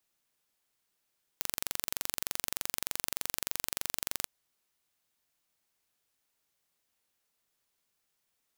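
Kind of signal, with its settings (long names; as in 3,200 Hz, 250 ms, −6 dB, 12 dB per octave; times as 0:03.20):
impulse train 23.3 per second, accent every 0, −4.5 dBFS 2.86 s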